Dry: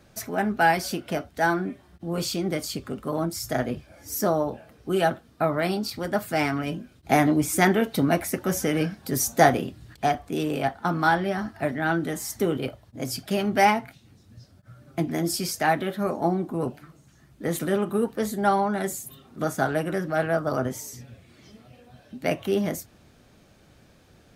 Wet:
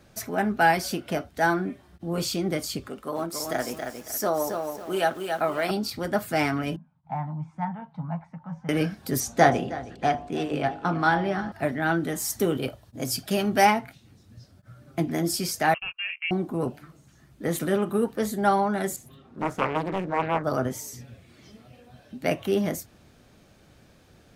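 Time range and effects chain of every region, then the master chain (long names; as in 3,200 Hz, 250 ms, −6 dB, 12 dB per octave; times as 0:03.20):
0:02.88–0:05.71: parametric band 100 Hz −13.5 dB 2.5 octaves + feedback echo at a low word length 275 ms, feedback 35%, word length 8 bits, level −5 dB
0:06.76–0:08.69: pair of resonant band-passes 380 Hz, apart 2.5 octaves + high-frequency loss of the air 100 metres
0:09.20–0:11.52: high-frequency loss of the air 64 metres + hum removal 51.18 Hz, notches 20 + feedback echo with a low-pass in the loop 315 ms, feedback 48%, low-pass 4,700 Hz, level −16 dB
0:12.18–0:13.67: high-shelf EQ 4,500 Hz +5 dB + notch filter 2,100 Hz, Q 16
0:15.74–0:16.31: noise gate −30 dBFS, range −39 dB + downward compressor 1.5 to 1, threshold −38 dBFS + voice inversion scrambler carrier 3,000 Hz
0:18.96–0:20.44: low-pass filter 2,000 Hz 6 dB per octave + highs frequency-modulated by the lows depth 0.77 ms
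whole clip: no processing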